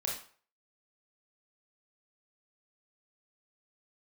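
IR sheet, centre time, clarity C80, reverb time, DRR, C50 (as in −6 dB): 36 ms, 9.5 dB, 0.45 s, −2.5 dB, 4.5 dB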